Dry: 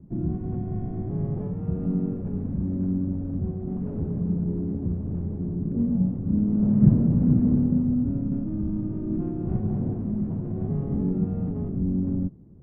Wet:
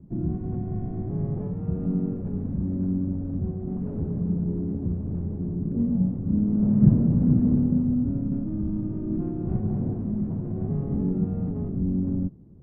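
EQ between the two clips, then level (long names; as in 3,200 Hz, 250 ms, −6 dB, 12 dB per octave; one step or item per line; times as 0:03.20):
high-frequency loss of the air 150 metres
0.0 dB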